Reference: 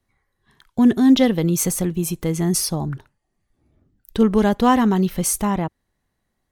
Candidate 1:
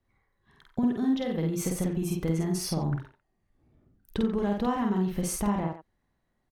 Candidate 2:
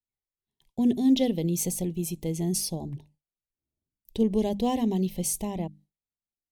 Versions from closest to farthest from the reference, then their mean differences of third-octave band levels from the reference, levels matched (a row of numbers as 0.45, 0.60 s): 2, 1; 3.0, 5.5 dB